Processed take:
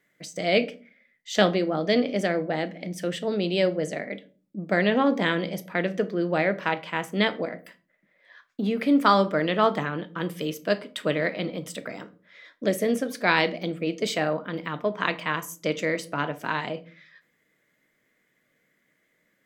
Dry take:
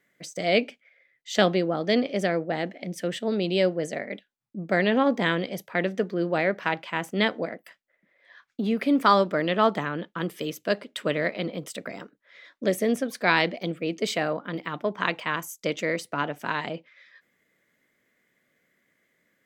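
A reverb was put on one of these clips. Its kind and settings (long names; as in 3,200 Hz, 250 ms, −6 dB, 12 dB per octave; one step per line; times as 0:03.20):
rectangular room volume 260 cubic metres, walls furnished, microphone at 0.53 metres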